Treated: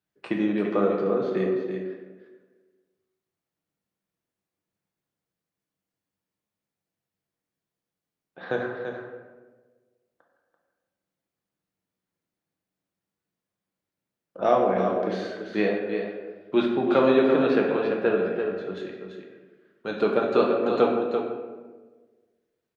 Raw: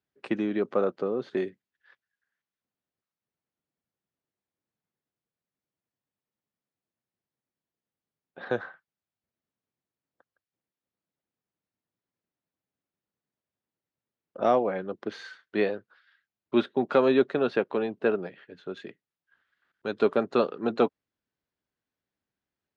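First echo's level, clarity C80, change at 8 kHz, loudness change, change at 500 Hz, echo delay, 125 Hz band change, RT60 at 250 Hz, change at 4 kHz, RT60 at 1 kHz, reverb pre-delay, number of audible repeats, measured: −7.5 dB, 3.0 dB, can't be measured, +3.0 dB, +4.0 dB, 338 ms, +5.5 dB, 1.6 s, +3.0 dB, 1.2 s, 6 ms, 1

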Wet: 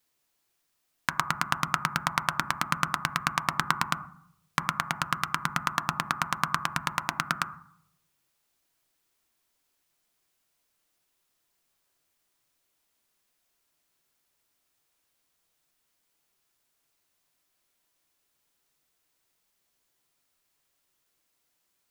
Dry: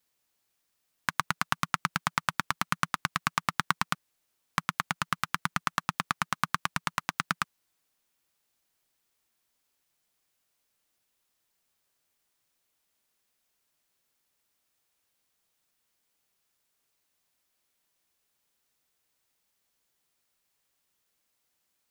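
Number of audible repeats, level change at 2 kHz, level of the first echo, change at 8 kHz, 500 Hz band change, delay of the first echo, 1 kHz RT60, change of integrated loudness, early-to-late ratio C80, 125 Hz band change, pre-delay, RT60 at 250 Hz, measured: no echo audible, +1.5 dB, no echo audible, +1.5 dB, +3.0 dB, no echo audible, 0.65 s, +2.0 dB, 17.0 dB, +2.5 dB, 3 ms, 0.75 s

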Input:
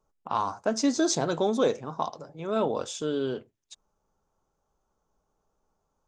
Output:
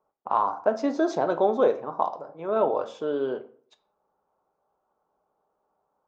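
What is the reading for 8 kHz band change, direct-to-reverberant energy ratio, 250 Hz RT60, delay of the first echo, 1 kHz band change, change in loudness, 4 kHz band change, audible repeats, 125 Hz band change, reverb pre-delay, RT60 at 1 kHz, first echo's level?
below −15 dB, 10.0 dB, 0.55 s, no echo audible, +5.0 dB, +2.5 dB, −11.0 dB, no echo audible, −7.5 dB, 4 ms, 0.55 s, no echo audible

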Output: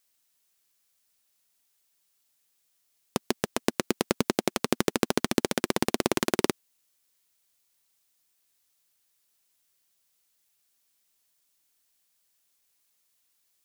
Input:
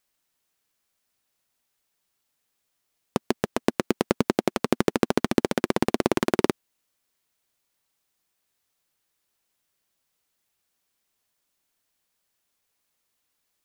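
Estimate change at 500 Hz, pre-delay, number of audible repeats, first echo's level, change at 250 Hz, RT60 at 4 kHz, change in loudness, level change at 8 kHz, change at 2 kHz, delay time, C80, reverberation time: −3.5 dB, no reverb audible, no echo audible, no echo audible, −4.0 dB, no reverb audible, −2.5 dB, +5.0 dB, −1.0 dB, no echo audible, no reverb audible, no reverb audible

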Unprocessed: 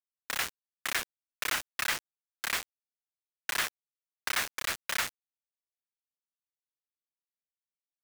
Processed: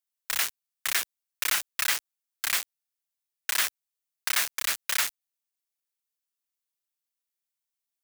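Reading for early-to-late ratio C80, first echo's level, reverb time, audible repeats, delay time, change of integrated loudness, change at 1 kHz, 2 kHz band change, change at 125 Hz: no reverb audible, no echo audible, no reverb audible, no echo audible, no echo audible, +5.5 dB, +0.5 dB, +2.5 dB, can't be measured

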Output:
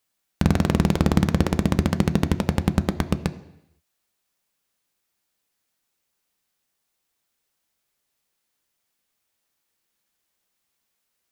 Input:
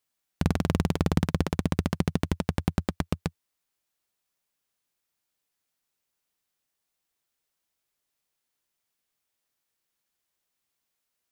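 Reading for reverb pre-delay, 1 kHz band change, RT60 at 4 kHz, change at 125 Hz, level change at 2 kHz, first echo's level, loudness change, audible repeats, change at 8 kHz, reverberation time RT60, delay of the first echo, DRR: 3 ms, +5.5 dB, 0.85 s, +5.5 dB, +5.5 dB, no echo audible, +6.0 dB, no echo audible, +5.0 dB, 0.80 s, no echo audible, 10.0 dB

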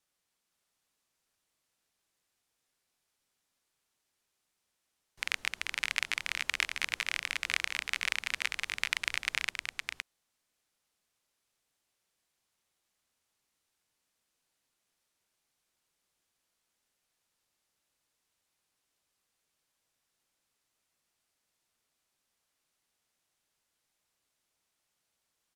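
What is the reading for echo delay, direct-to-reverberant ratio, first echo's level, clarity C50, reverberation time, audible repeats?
513 ms, no reverb audible, −4.5 dB, no reverb audible, no reverb audible, 1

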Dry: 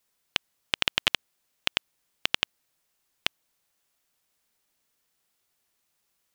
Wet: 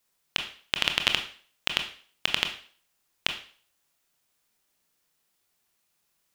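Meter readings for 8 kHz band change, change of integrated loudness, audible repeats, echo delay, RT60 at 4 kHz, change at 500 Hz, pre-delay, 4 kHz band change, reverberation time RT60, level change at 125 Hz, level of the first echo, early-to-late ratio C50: +1.0 dB, +1.0 dB, no echo audible, no echo audible, 0.45 s, +1.0 dB, 21 ms, +1.0 dB, 0.45 s, +2.0 dB, no echo audible, 9.5 dB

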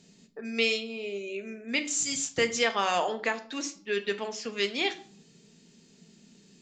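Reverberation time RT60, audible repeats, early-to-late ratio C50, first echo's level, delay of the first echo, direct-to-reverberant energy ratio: 0.50 s, no echo audible, 14.5 dB, no echo audible, no echo audible, 7.0 dB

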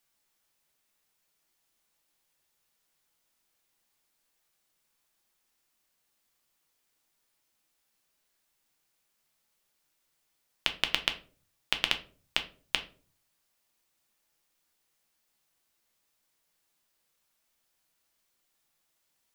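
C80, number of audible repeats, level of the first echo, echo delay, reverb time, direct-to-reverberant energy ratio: 19.5 dB, no echo audible, no echo audible, no echo audible, 0.40 s, 6.0 dB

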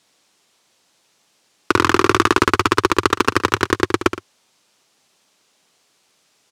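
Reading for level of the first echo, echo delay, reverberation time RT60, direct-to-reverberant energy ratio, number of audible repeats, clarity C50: −11.0 dB, 71 ms, no reverb audible, no reverb audible, 2, no reverb audible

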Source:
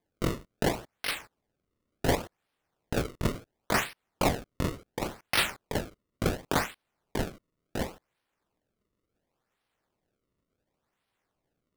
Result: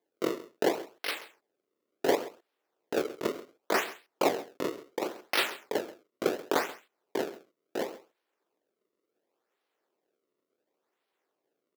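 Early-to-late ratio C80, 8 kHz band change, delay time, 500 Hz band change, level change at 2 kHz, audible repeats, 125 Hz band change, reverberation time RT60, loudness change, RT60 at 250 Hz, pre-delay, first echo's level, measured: no reverb audible, −4.0 dB, 133 ms, +3.0 dB, −1.5 dB, 1, −18.0 dB, no reverb audible, −0.5 dB, no reverb audible, no reverb audible, −17.5 dB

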